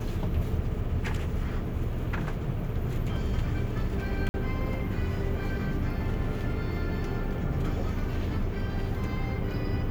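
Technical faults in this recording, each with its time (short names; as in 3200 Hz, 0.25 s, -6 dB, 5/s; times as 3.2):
4.29–4.34 gap 50 ms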